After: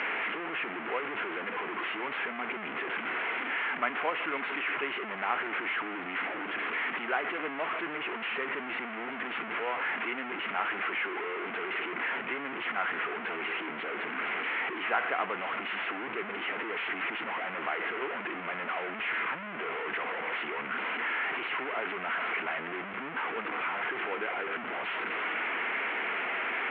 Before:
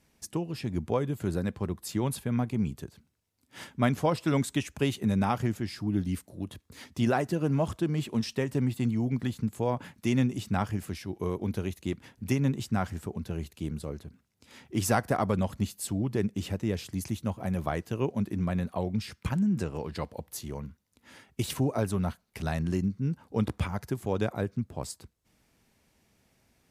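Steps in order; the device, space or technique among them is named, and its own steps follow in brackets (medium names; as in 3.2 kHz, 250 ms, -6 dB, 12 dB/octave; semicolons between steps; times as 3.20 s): 10.85–11.50 s: high-pass 200 Hz 12 dB/octave; digital answering machine (band-pass 390–3100 Hz; one-bit delta coder 16 kbps, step -26 dBFS; cabinet simulation 440–4200 Hz, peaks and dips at 570 Hz -8 dB, 850 Hz -3 dB, 1.4 kHz +4 dB, 2.1 kHz +5 dB, 3.7 kHz -10 dB)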